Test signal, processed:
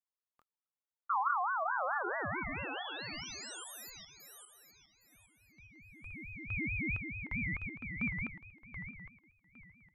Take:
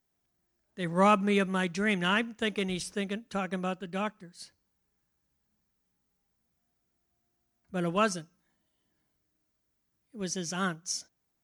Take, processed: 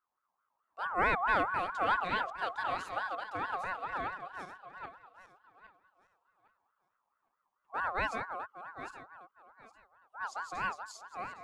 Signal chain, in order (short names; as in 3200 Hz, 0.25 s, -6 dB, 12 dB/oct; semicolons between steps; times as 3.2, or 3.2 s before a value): regenerating reverse delay 0.405 s, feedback 48%, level -6 dB; tilt -3 dB/oct; ring modulator with a swept carrier 1100 Hz, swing 20%, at 4.6 Hz; gain -7 dB